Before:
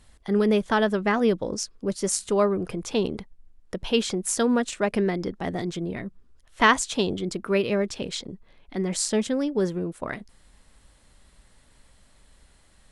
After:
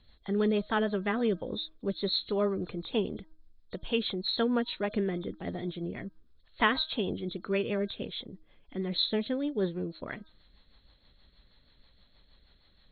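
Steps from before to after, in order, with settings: knee-point frequency compression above 3.2 kHz 4:1; de-hum 315.1 Hz, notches 5; rotary cabinet horn 6.3 Hz; trim -4.5 dB

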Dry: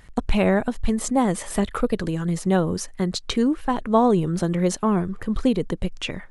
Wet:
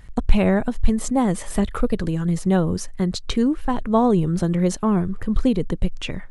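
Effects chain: bass shelf 160 Hz +9.5 dB; trim -1.5 dB

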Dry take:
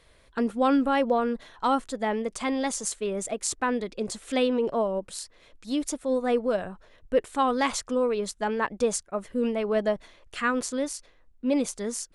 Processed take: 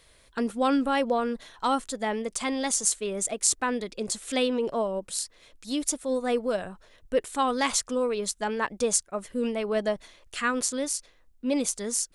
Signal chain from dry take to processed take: treble shelf 3.7 kHz +10.5 dB; trim -2 dB

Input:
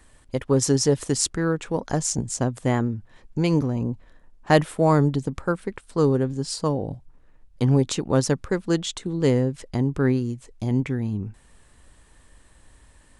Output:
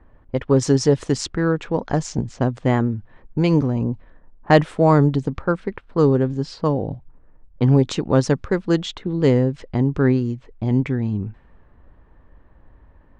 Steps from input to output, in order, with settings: distance through air 110 m; level-controlled noise filter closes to 1.1 kHz, open at -19 dBFS; trim +4 dB

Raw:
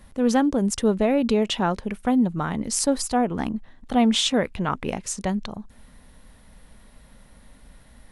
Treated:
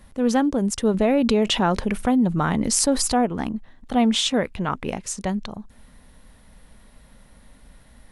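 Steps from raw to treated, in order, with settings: 0.94–3.26 s: level flattener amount 50%

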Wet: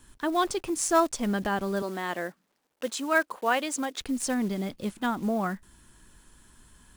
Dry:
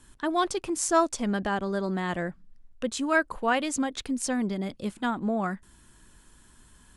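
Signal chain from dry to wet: block-companded coder 5-bit; 1.82–4.01 s: high-pass 320 Hz 12 dB/octave

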